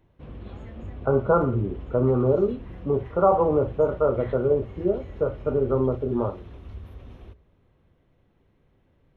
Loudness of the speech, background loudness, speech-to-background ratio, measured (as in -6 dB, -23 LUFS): -24.0 LUFS, -41.0 LUFS, 17.0 dB